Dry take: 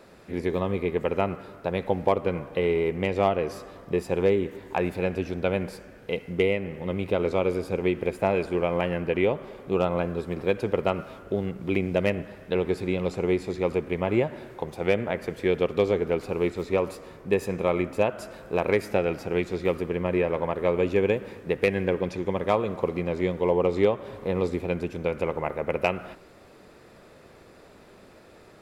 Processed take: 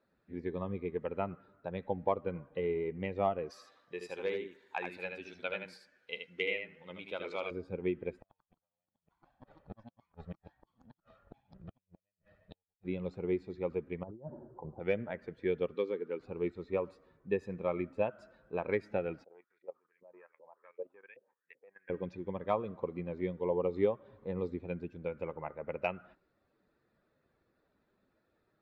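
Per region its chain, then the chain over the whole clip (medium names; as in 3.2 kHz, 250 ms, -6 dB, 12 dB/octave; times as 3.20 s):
3.50–7.51 s: tilt EQ +4 dB/octave + delay 78 ms -4 dB
8.20–12.85 s: comb filter that takes the minimum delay 1.6 ms + inverted gate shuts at -19 dBFS, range -41 dB + ever faster or slower copies 95 ms, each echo +5 st, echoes 2, each echo -6 dB
14.03–14.80 s: low-pass 1.1 kHz 24 dB/octave + compressor with a negative ratio -32 dBFS
15.75–16.20 s: high-pass 230 Hz + peaking EQ 690 Hz -12.5 dB 0.3 oct
19.24–21.90 s: LFO band-pass saw up 2.6 Hz 500–2400 Hz + level held to a coarse grid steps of 13 dB
whole clip: expander on every frequency bin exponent 1.5; low-pass 3.1 kHz 12 dB/octave; bass shelf 79 Hz -8 dB; trim -6 dB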